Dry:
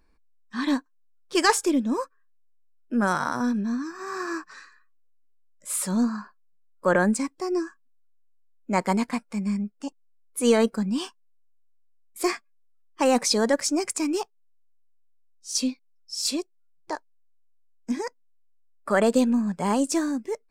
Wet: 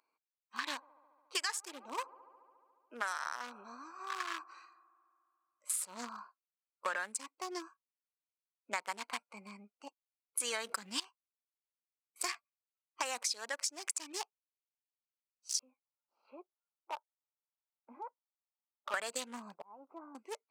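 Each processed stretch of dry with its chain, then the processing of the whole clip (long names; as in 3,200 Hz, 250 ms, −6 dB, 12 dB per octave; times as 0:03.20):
0:00.67–0:05.80: high-pass filter 300 Hz + delay with a band-pass on its return 71 ms, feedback 81%, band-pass 770 Hz, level −21 dB
0:10.40–0:11.00: low-shelf EQ 380 Hz +5 dB + envelope flattener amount 70%
0:15.59–0:18.94: downward compressor 1.5 to 1, threshold −55 dBFS + loudspeaker in its box 200–2,000 Hz, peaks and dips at 230 Hz +7 dB, 360 Hz +5 dB, 570 Hz +8 dB, 870 Hz +10 dB, 1,300 Hz +7 dB, 1,900 Hz −7 dB
0:19.54–0:20.15: gain on one half-wave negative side −7 dB + low-pass filter 1,200 Hz 24 dB per octave + volume swells 723 ms
whole clip: adaptive Wiener filter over 25 samples; high-pass filter 1,500 Hz 12 dB per octave; downward compressor 12 to 1, threshold −40 dBFS; level +7 dB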